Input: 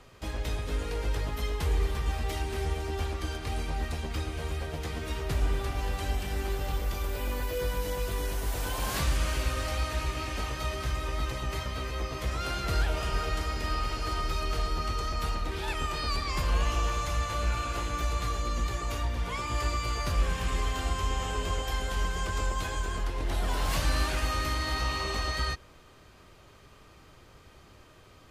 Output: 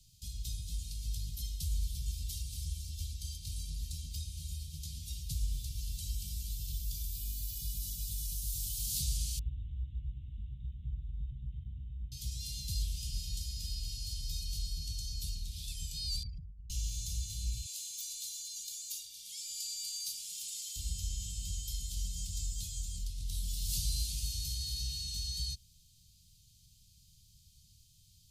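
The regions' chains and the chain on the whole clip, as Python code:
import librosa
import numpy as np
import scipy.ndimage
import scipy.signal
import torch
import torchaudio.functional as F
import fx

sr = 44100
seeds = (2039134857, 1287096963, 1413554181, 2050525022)

y = fx.chain(x, sr, fx.savgol(points=65),
    fx.resample_bad(factor=6, down='none', up='filtered'), at=(9.39, 12.12))
y = fx.chain(y, sr, fx.envelope_sharpen(power=3.0),
    fx.highpass(hz=66.0, slope=12),
    fx.over_compress(threshold_db=-36.0, ratio=-0.5), at=(16.23, 16.7))
y = fx.chain(y, sr, fx.highpass(hz=740.0, slope=12),
    fx.high_shelf(hz=5500.0, db=5.0), at=(17.66, 20.76))
y = scipy.signal.sosfilt(scipy.signal.cheby2(4, 60, [430.0, 1500.0], 'bandstop', fs=sr, output='sos'), y)
y = fx.high_shelf(y, sr, hz=3600.0, db=11.0)
y = F.gain(torch.from_numpy(y), -7.0).numpy()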